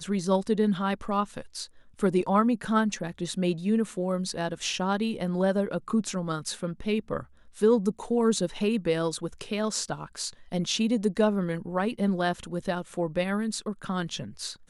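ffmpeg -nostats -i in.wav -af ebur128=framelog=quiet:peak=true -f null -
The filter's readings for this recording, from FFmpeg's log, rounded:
Integrated loudness:
  I:         -28.1 LUFS
  Threshold: -38.2 LUFS
Loudness range:
  LRA:         1.8 LU
  Threshold: -48.1 LUFS
  LRA low:   -29.0 LUFS
  LRA high:  -27.2 LUFS
True peak:
  Peak:      -10.8 dBFS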